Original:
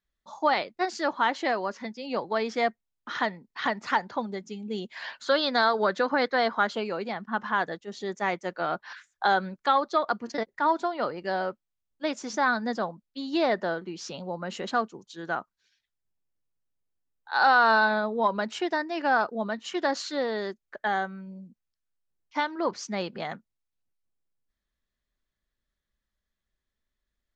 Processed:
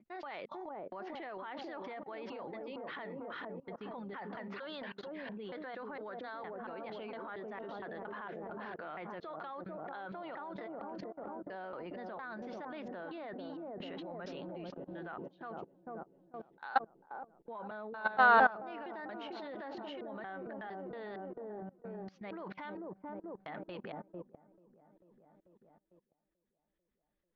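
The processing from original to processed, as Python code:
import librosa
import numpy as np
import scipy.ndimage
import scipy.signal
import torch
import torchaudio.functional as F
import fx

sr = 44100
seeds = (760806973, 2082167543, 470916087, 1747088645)

p1 = fx.block_reorder(x, sr, ms=230.0, group=4)
p2 = fx.dynamic_eq(p1, sr, hz=230.0, q=5.7, threshold_db=-49.0, ratio=4.0, max_db=-4)
p3 = scipy.signal.sosfilt(scipy.signal.butter(4, 3200.0, 'lowpass', fs=sr, output='sos'), p2)
p4 = fx.low_shelf(p3, sr, hz=160.0, db=-5.0)
p5 = p4 + fx.echo_wet_lowpass(p4, sr, ms=443, feedback_pct=54, hz=560.0, wet_db=-3.5, dry=0)
p6 = fx.transient(p5, sr, attack_db=-5, sustain_db=5)
p7 = fx.level_steps(p6, sr, step_db=21)
y = p7 * 10.0 ** (-2.0 / 20.0)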